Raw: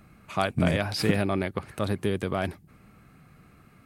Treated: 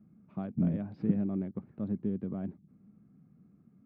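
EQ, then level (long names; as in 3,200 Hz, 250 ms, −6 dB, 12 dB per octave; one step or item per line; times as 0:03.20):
resonant band-pass 210 Hz, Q 2.6
high-frequency loss of the air 150 metres
0.0 dB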